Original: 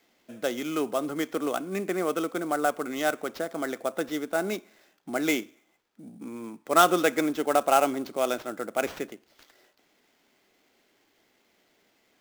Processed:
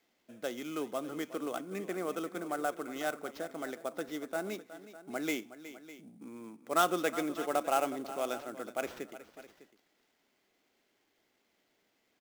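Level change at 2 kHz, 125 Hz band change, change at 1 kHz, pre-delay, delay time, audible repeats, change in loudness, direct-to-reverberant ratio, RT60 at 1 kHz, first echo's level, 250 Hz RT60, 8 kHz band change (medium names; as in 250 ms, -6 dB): -8.5 dB, -8.0 dB, -8.5 dB, no reverb, 367 ms, 2, -8.5 dB, no reverb, no reverb, -14.5 dB, no reverb, -8.5 dB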